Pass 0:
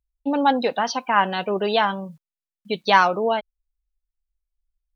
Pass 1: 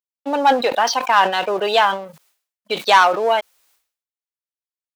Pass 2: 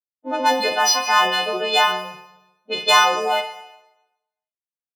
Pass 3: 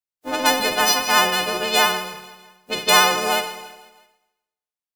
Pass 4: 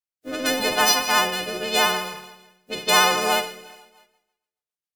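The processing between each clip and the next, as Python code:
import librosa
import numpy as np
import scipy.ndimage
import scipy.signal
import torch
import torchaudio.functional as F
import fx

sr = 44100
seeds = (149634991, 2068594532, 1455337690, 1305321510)

y1 = fx.leveller(x, sr, passes=2)
y1 = scipy.signal.sosfilt(scipy.signal.butter(2, 480.0, 'highpass', fs=sr, output='sos'), y1)
y1 = fx.sustainer(y1, sr, db_per_s=120.0)
y1 = y1 * librosa.db_to_amplitude(-1.0)
y2 = fx.freq_snap(y1, sr, grid_st=3)
y2 = fx.env_lowpass(y2, sr, base_hz=570.0, full_db=-11.5)
y2 = fx.rev_schroeder(y2, sr, rt60_s=0.95, comb_ms=38, drr_db=8.5)
y2 = y2 * librosa.db_to_amplitude(-4.0)
y3 = fx.spec_flatten(y2, sr, power=0.46)
y3 = fx.vibrato(y3, sr, rate_hz=14.0, depth_cents=25.0)
y3 = fx.echo_feedback(y3, sr, ms=163, feedback_pct=53, wet_db=-18.5)
y4 = fx.rotary_switch(y3, sr, hz=0.85, then_hz=7.5, switch_at_s=3.36)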